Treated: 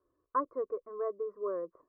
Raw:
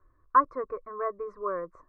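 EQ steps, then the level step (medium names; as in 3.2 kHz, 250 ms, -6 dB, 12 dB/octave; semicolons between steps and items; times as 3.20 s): band-pass filter 410 Hz, Q 1.5; 0.0 dB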